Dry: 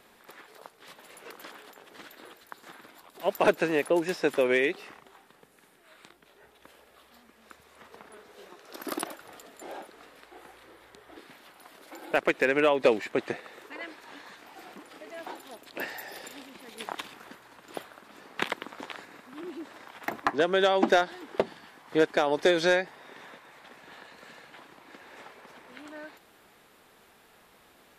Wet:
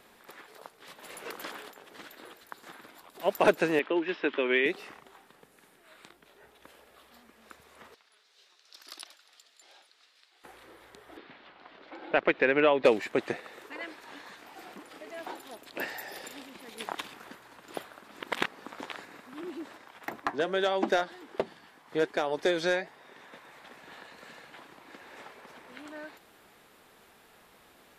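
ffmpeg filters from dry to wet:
-filter_complex "[0:a]asettb=1/sr,asplit=3[a][b][c];[a]atrim=end=3.794[d];[b]atrim=start=3.79:end=4.66,asetpts=PTS-STARTPTS,afade=t=in:d=0.004:c=qsin,afade=t=out:st=0.866:d=0.004:c=qsin,highpass=f=230:w=0.5412,highpass=f=230:w=1.3066,equalizer=f=510:t=q:w=4:g=-8,equalizer=f=740:t=q:w=4:g=-8,equalizer=f=3.1k:t=q:w=4:g=6,lowpass=f=3.4k:w=0.5412,lowpass=f=3.4k:w=1.3066[e];[c]atrim=start=4.656[f];[d][e]acrossfade=d=0.004:c1=hsin:c2=qsin[g];[g][f]acrossfade=d=0.004:c1=qsin:c2=hsin,asettb=1/sr,asplit=3[h][i][j];[h]atrim=end=7.944[k];[i]atrim=start=7.94:end=10.44,asetpts=PTS-STARTPTS,afade=t=in:d=0.004:c=qsin,afade=t=out:st=2.496:d=0.004:c=qsin,bandpass=f=4.6k:t=q:w=1.7[l];[j]atrim=start=10.436[m];[k][l]acrossfade=d=0.004:c1=hsin:c2=qsin[n];[n][m]acrossfade=d=0.004:c1=qsin:c2=hsin,asettb=1/sr,asplit=3[o][p][q];[o]atrim=end=11.174[r];[p]atrim=start=11.17:end=12.85,asetpts=PTS-STARTPTS,afade=t=in:d=0.004:c=qsin,afade=t=out:st=1.676:d=0.004:c=qsin,lowpass=f=4k:w=0.5412,lowpass=f=4k:w=1.3066[s];[q]atrim=start=12.846[t];[r][s]acrossfade=d=0.004:c1=hsin:c2=qsin[u];[u][t]acrossfade=d=0.004:c1=qsin:c2=hsin,asplit=3[v][w][x];[v]afade=t=out:st=19.75:d=0.02[y];[w]flanger=delay=1.7:depth=3.3:regen=-87:speed=1.3:shape=sinusoidal,afade=t=in:st=19.75:d=0.02,afade=t=out:st=23.32:d=0.02[z];[x]afade=t=in:st=23.32:d=0.02[aa];[y][z][aa]amix=inputs=3:normalize=0,asplit=5[ab][ac][ad][ae][af];[ab]atrim=end=1.022[ag];[ac]atrim=start=1.018:end=1.682,asetpts=PTS-STARTPTS,volume=5dB[ah];[ad]atrim=start=1.678:end=18.202[ai];[ae]atrim=start=18.198:end=18.652,asetpts=PTS-STARTPTS,areverse[aj];[af]atrim=start=18.648[ak];[ag][ah]acrossfade=d=0.004:c1=hsin:c2=hsin[al];[al][ai]acrossfade=d=0.004:c1=hsin:c2=hsin[am];[am][aj]acrossfade=d=0.004:c1=hsin:c2=hsin[an];[an][ak]acrossfade=d=0.004:c1=hsin:c2=hsin"

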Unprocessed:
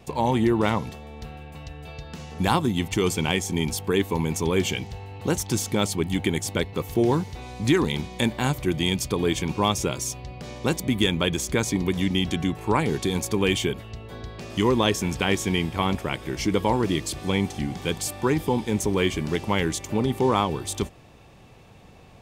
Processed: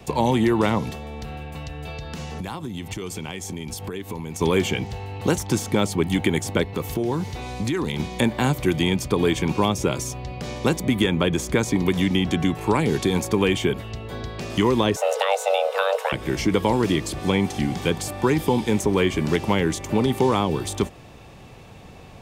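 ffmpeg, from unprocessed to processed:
-filter_complex "[0:a]asettb=1/sr,asplit=3[a][b][c];[a]atrim=end=1.084[d];[b]atrim=start=1.08:end=4.41,asetpts=PTS-STARTPTS,afade=t=in:d=0.004:c=qsin,afade=t=out:st=3.326:d=0.004:c=qsin,acompressor=threshold=-33dB:ratio=12:attack=3.2:release=140:knee=1:detection=peak[e];[c]atrim=start=4.406[f];[d][e]acrossfade=d=0.004:c1=hsin:c2=qsin[g];[g][f]acrossfade=d=0.004:c1=qsin:c2=hsin,asettb=1/sr,asplit=3[h][i][j];[h]atrim=end=6.704[k];[i]atrim=start=6.7:end=8,asetpts=PTS-STARTPTS,afade=t=in:d=0.004:c=qsin,afade=t=out:st=1.296:d=0.004:c=qsin,acompressor=threshold=-26dB:ratio=6:attack=3.2:release=140:knee=1:detection=peak[l];[j]atrim=start=7.996[m];[k][l]acrossfade=d=0.004:c1=hsin:c2=qsin[n];[n][m]acrossfade=d=0.004:c1=qsin:c2=hsin,asettb=1/sr,asplit=3[o][p][q];[o]atrim=end=14.964[r];[p]atrim=start=14.96:end=16.12,asetpts=PTS-STARTPTS,afade=t=in:d=0.004:c=qsin,afade=t=out:st=1.156:d=0.004:c=qsin,afreqshift=390[s];[q]atrim=start=16.116[t];[r][s]acrossfade=d=0.004:c1=hsin:c2=qsin[u];[u][t]acrossfade=d=0.004:c1=qsin:c2=hsin,acrossover=split=130|600|2100[v][w][x][y];[v]acompressor=threshold=-38dB:ratio=4[z];[w]acompressor=threshold=-24dB:ratio=4[aa];[x]acompressor=threshold=-31dB:ratio=4[ab];[y]acompressor=threshold=-37dB:ratio=4[ac];[z][aa][ab][ac]amix=inputs=4:normalize=0,volume=6dB"

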